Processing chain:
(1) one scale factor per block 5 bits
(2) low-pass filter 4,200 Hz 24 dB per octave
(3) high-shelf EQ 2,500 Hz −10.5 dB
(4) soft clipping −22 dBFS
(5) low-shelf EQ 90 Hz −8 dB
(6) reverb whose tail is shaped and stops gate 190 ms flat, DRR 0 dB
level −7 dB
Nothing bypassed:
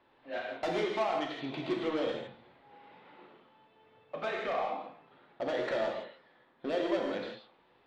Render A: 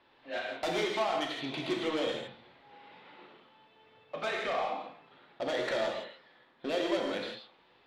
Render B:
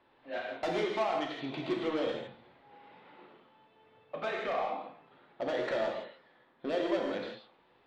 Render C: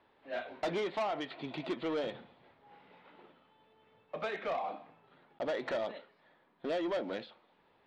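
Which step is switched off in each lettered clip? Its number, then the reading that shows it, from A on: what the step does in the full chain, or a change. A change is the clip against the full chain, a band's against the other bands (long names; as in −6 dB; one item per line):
3, 4 kHz band +6.0 dB
1, distortion level −22 dB
6, change in momentary loudness spread −2 LU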